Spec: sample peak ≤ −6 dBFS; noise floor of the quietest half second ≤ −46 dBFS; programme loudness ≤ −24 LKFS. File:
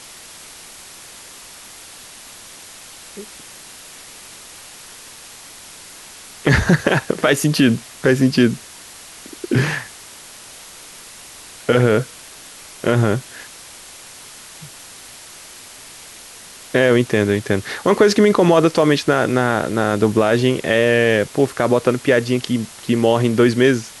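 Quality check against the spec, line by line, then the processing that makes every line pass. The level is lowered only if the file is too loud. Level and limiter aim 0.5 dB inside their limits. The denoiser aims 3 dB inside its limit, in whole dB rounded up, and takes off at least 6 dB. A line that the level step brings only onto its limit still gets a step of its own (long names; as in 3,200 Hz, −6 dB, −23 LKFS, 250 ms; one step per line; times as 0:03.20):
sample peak −3.0 dBFS: out of spec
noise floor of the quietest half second −39 dBFS: out of spec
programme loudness −17.0 LKFS: out of spec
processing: level −7.5 dB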